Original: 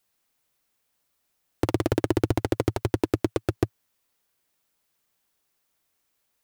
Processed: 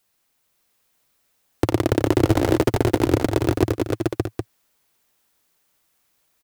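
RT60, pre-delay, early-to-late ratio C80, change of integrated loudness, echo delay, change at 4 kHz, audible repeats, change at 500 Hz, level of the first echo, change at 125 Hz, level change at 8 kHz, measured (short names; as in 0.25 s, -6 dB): none, none, none, +6.0 dB, 90 ms, +7.0 dB, 6, +7.0 dB, -13.5 dB, +6.5 dB, +7.0 dB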